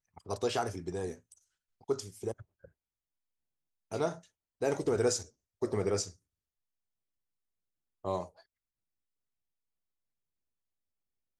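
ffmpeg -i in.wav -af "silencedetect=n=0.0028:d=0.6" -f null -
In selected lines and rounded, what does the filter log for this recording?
silence_start: 2.65
silence_end: 3.91 | silence_duration: 1.26
silence_start: 6.12
silence_end: 8.05 | silence_duration: 1.92
silence_start: 8.41
silence_end: 11.39 | silence_duration: 2.98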